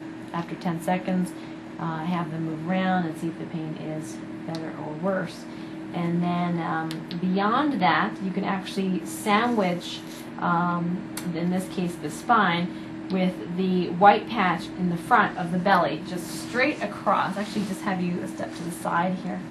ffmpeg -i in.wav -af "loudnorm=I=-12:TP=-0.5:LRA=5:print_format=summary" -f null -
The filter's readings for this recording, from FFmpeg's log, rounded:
Input Integrated:    -26.0 LUFS
Input True Peak:      -2.1 dBTP
Input LRA:             6.5 LU
Input Threshold:     -36.1 LUFS